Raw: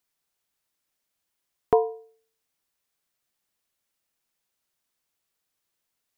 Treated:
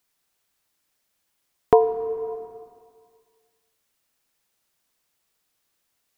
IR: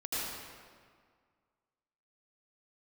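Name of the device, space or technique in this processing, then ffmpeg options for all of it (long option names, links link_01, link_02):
ducked reverb: -filter_complex "[0:a]asplit=3[link_01][link_02][link_03];[1:a]atrim=start_sample=2205[link_04];[link_02][link_04]afir=irnorm=-1:irlink=0[link_05];[link_03]apad=whole_len=272325[link_06];[link_05][link_06]sidechaincompress=threshold=-29dB:ratio=3:attack=11:release=602,volume=-10.5dB[link_07];[link_01][link_07]amix=inputs=2:normalize=0,volume=4.5dB"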